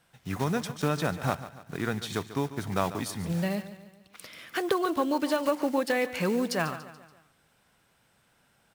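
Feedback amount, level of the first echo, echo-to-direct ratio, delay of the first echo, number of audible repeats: 47%, −14.0 dB, −13.0 dB, 143 ms, 4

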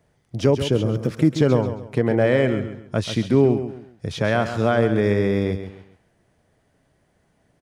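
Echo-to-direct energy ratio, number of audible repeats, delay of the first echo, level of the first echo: −9.5 dB, 3, 135 ms, −10.0 dB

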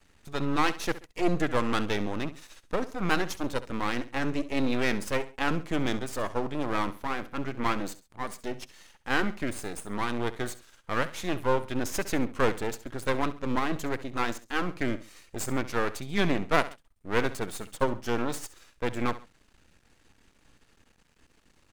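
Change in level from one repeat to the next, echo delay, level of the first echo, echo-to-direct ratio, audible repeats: −9.0 dB, 67 ms, −15.5 dB, −15.0 dB, 2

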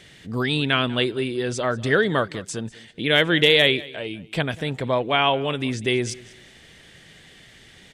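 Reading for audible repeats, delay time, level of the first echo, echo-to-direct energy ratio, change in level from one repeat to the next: 2, 193 ms, −20.5 dB, −20.0 dB, −11.5 dB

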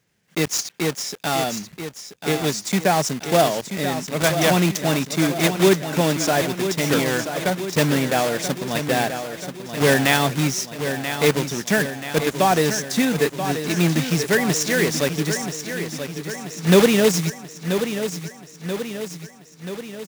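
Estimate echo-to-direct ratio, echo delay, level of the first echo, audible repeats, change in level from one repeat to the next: −7.0 dB, 983 ms, −9.0 dB, 6, −4.5 dB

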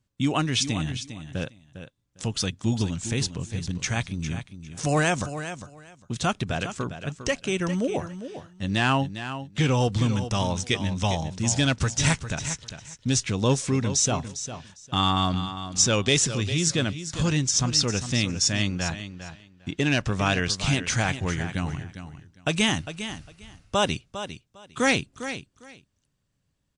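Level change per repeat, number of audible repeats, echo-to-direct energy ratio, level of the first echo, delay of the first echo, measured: −15.0 dB, 2, −11.0 dB, −11.0 dB, 403 ms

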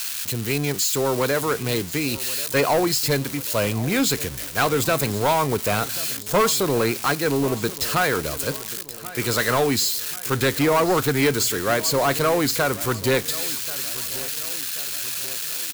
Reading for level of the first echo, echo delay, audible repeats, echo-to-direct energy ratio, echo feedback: −17.5 dB, 1,085 ms, 3, −16.0 dB, 51%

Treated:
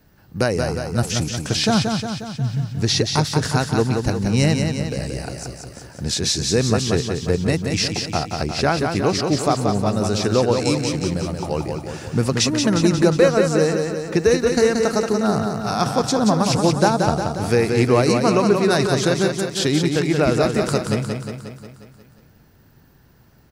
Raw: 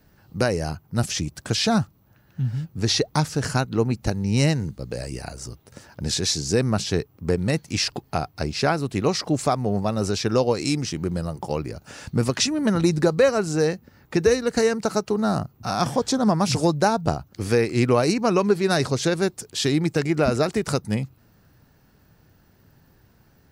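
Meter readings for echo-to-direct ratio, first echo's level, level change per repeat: −3.0 dB, −5.0 dB, −4.5 dB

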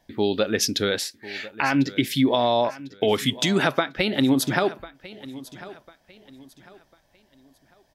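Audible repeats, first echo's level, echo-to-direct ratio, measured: 2, −18.0 dB, −17.5 dB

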